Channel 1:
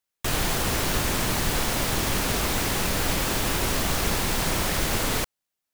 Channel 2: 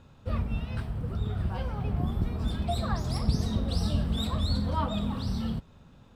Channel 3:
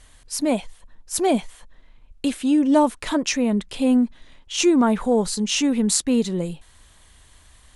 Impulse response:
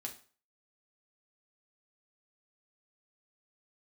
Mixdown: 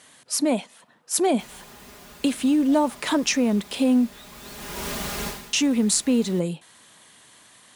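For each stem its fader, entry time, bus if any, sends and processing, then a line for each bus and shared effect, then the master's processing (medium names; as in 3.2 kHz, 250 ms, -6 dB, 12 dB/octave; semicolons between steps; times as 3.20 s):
-6.5 dB, 1.15 s, send -19 dB, comb 4.9 ms, depth 73%; auto duck -21 dB, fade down 0.25 s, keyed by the third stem
-14.0 dB, 0.00 s, no send, high-pass 650 Hz 24 dB/octave
+3.0 dB, 0.00 s, muted 4.22–5.53 s, send -20 dB, high-pass 150 Hz 24 dB/octave; compression 2.5:1, threshold -23 dBFS, peak gain reduction 8 dB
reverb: on, RT60 0.40 s, pre-delay 4 ms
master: high-pass 51 Hz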